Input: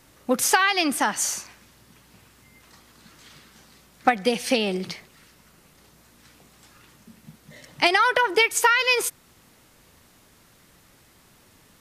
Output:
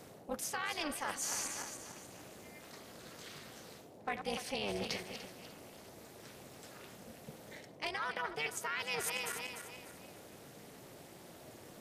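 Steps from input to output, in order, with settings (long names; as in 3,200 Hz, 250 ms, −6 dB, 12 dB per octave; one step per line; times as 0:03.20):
feedback delay that plays each chunk backwards 148 ms, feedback 60%, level −14 dB
in parallel at −9.5 dB: hard clipping −16 dBFS, distortion −11 dB
on the sum: amplitude modulation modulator 300 Hz, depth 85%
low-shelf EQ 190 Hz −10.5 dB
reversed playback
downward compressor 16 to 1, threshold −34 dBFS, peak gain reduction 20.5 dB
reversed playback
noise in a band 92–710 Hz −56 dBFS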